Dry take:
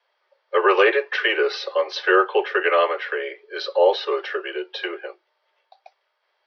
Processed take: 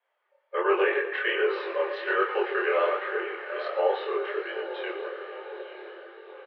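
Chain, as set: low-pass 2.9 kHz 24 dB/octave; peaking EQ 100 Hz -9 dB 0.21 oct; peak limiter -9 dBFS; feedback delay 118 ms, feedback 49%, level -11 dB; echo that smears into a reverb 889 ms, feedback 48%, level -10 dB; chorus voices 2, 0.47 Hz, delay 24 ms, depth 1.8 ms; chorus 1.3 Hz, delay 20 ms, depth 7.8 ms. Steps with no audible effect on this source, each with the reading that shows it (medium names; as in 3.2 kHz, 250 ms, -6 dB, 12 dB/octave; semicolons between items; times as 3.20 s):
peaking EQ 100 Hz: input has nothing below 320 Hz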